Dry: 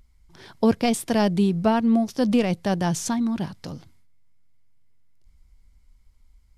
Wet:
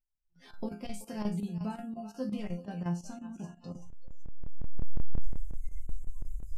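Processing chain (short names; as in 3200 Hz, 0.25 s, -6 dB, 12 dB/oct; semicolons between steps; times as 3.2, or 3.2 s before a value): recorder AGC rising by 20 dB/s; 2.44–3.74 LPF 3600 Hz 6 dB/oct; resonator bank F3 minor, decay 0.33 s; on a send: thinning echo 0.381 s, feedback 51%, high-pass 850 Hz, level -10 dB; on the sum: spectral noise reduction 24 dB; low shelf 180 Hz +8.5 dB; chopper 5.6 Hz, depth 65%, duty 85%; gain -1.5 dB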